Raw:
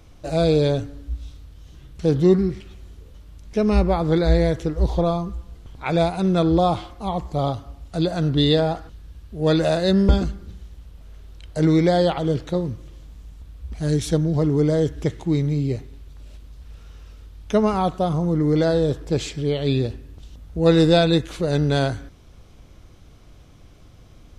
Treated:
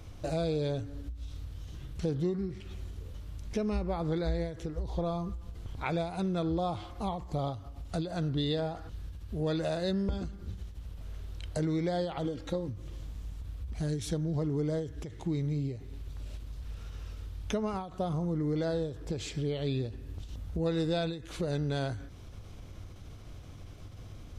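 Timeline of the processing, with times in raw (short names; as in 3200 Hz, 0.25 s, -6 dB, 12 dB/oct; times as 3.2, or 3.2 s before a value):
12.25–12.69 comb 3.7 ms, depth 60%
whole clip: bell 97 Hz +8 dB 0.4 oct; compressor 3:1, threshold -33 dBFS; ending taper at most 100 dB/s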